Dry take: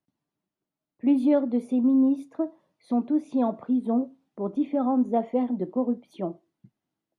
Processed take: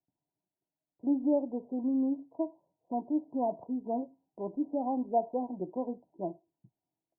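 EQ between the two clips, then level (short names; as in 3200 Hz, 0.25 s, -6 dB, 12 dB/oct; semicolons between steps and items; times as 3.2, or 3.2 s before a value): rippled Chebyshev low-pass 1000 Hz, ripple 6 dB; bell 230 Hz -13 dB 0.65 oct; 0.0 dB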